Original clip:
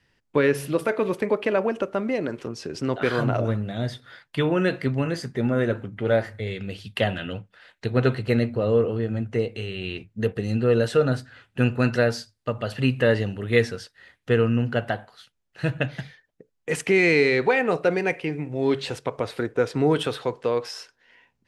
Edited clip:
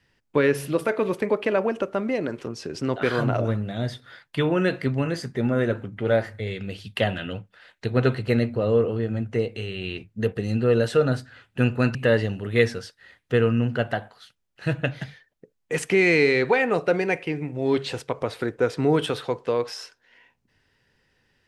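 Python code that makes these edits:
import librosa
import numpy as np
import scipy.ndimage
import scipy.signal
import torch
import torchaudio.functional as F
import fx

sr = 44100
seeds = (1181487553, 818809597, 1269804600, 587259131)

y = fx.edit(x, sr, fx.cut(start_s=11.95, length_s=0.97), tone=tone)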